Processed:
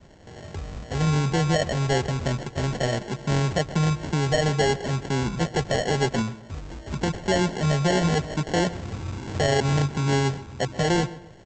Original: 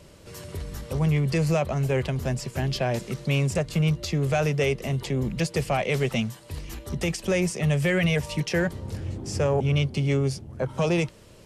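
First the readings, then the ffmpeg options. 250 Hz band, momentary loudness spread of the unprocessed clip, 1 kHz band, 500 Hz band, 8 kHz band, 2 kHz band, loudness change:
+1.0 dB, 11 LU, +6.0 dB, +1.0 dB, +3.0 dB, +1.0 dB, +1.0 dB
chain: -filter_complex "[0:a]adynamicequalizer=threshold=0.0178:dfrequency=370:dqfactor=1.3:tfrequency=370:tqfactor=1.3:attack=5:release=100:ratio=0.375:range=1.5:mode=boostabove:tftype=bell,aresample=16000,acrusher=samples=13:mix=1:aa=0.000001,aresample=44100,asplit=2[link_01][link_02];[link_02]adelay=131,lowpass=frequency=3500:poles=1,volume=-16.5dB,asplit=2[link_03][link_04];[link_04]adelay=131,lowpass=frequency=3500:poles=1,volume=0.36,asplit=2[link_05][link_06];[link_06]adelay=131,lowpass=frequency=3500:poles=1,volume=0.36[link_07];[link_01][link_03][link_05][link_07]amix=inputs=4:normalize=0"

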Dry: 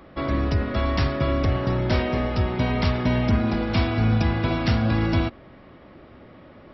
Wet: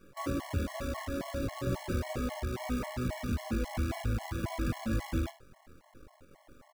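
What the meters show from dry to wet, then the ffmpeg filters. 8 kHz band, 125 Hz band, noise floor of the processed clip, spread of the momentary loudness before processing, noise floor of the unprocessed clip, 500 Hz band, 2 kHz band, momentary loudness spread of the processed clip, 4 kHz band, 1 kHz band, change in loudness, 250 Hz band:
can't be measured, −13.5 dB, −63 dBFS, 3 LU, −48 dBFS, −12.0 dB, −12.5 dB, 3 LU, −13.0 dB, −12.0 dB, −12.0 dB, −12.0 dB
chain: -af "lowpass=frequency=2200:width=0.5412,lowpass=frequency=2200:width=1.3066,asubboost=boost=3:cutoff=73,alimiter=limit=-17.5dB:level=0:latency=1:release=252,flanger=delay=20:depth=5.2:speed=2.2,acrusher=bits=7:dc=4:mix=0:aa=0.000001,aecho=1:1:40|76:0.251|0.168,afftfilt=real='re*gt(sin(2*PI*3.7*pts/sr)*(1-2*mod(floor(b*sr/1024/560),2)),0)':imag='im*gt(sin(2*PI*3.7*pts/sr)*(1-2*mod(floor(b*sr/1024/560),2)),0)':win_size=1024:overlap=0.75,volume=-2dB"

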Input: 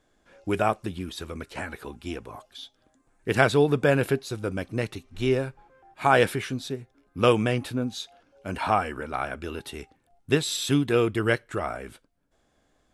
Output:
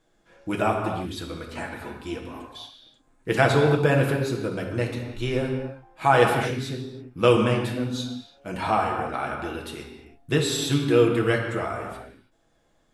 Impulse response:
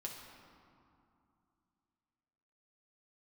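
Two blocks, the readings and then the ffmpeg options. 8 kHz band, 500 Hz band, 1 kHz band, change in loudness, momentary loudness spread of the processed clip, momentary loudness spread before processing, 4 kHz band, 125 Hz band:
+0.5 dB, +2.0 dB, +2.0 dB, +1.5 dB, 18 LU, 18 LU, +1.5 dB, +3.5 dB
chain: -filter_complex "[1:a]atrim=start_sample=2205,afade=type=out:start_time=0.39:duration=0.01,atrim=end_sample=17640[link_01];[0:a][link_01]afir=irnorm=-1:irlink=0,volume=3.5dB"

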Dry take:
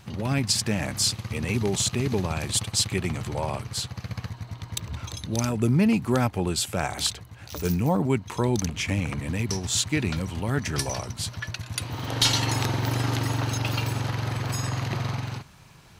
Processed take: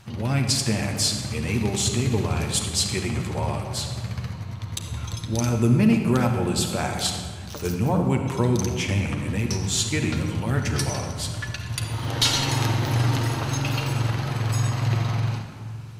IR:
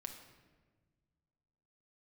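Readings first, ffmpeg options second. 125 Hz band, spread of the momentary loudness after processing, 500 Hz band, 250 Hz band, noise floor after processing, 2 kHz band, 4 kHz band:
+4.0 dB, 11 LU, +1.5 dB, +2.5 dB, −36 dBFS, +1.5 dB, +1.0 dB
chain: -filter_complex "[1:a]atrim=start_sample=2205,asetrate=26901,aresample=44100[link_01];[0:a][link_01]afir=irnorm=-1:irlink=0,volume=2dB"

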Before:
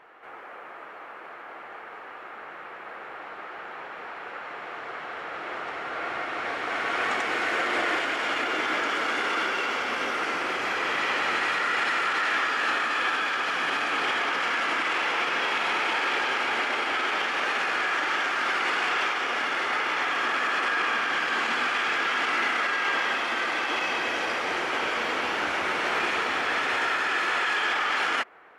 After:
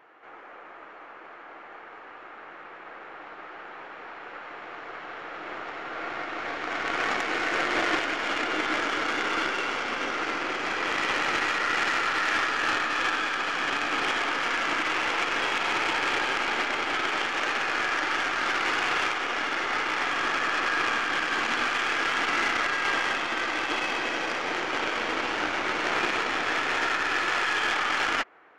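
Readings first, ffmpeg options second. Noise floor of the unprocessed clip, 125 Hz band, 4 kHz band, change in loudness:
−42 dBFS, can't be measured, 0.0 dB, −0.5 dB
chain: -af "aresample=16000,aresample=44100,equalizer=frequency=310:width=4.6:gain=5,aeval=exprs='0.2*(cos(1*acos(clip(val(0)/0.2,-1,1)))-cos(1*PI/2))+0.0398*(cos(3*acos(clip(val(0)/0.2,-1,1)))-cos(3*PI/2))+0.00251*(cos(8*acos(clip(val(0)/0.2,-1,1)))-cos(8*PI/2))':channel_layout=same,volume=4.5dB"

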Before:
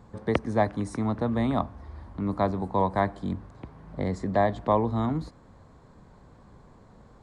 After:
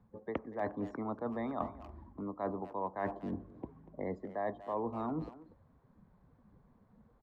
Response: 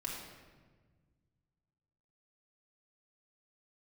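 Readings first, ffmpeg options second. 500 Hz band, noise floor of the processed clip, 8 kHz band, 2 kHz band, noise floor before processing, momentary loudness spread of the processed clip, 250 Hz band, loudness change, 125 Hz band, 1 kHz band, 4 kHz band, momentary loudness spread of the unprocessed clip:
−10.5 dB, −68 dBFS, can't be measured, −11.5 dB, −54 dBFS, 11 LU, −11.5 dB, −12.0 dB, −17.0 dB, −11.5 dB, below −15 dB, 16 LU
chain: -filter_complex "[0:a]afftdn=noise_reduction=20:noise_floor=-41,acrossover=split=250 3100:gain=0.178 1 0.2[link_01][link_02][link_03];[link_01][link_02][link_03]amix=inputs=3:normalize=0,areverse,acompressor=threshold=-40dB:ratio=5,areverse,aresample=16000,aresample=44100,asplit=2[link_04][link_05];[link_05]adelay=240,highpass=300,lowpass=3400,asoftclip=type=hard:threshold=-37dB,volume=-14dB[link_06];[link_04][link_06]amix=inputs=2:normalize=0,volume=4.5dB"

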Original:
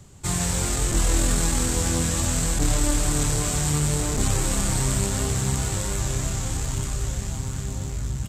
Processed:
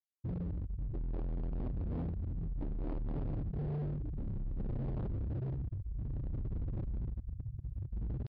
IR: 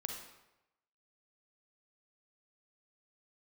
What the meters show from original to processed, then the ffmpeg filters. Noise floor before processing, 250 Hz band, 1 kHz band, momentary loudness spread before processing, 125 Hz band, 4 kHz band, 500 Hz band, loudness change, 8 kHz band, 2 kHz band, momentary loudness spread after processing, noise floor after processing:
−31 dBFS, −14.0 dB, −23.5 dB, 7 LU, −12.0 dB, below −40 dB, −16.5 dB, −16.0 dB, below −40 dB, below −30 dB, 4 LU, −49 dBFS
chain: -af "afftfilt=real='re*gte(hypot(re,im),0.316)':imag='im*gte(hypot(re,im),0.316)':win_size=1024:overlap=0.75,areverse,acompressor=mode=upward:threshold=-34dB:ratio=2.5,areverse,tremolo=f=0.6:d=0.6,crystalizer=i=8.5:c=0,aresample=16000,asoftclip=type=hard:threshold=-33dB,aresample=44100,aresample=11025,aresample=44100,volume=-1.5dB"

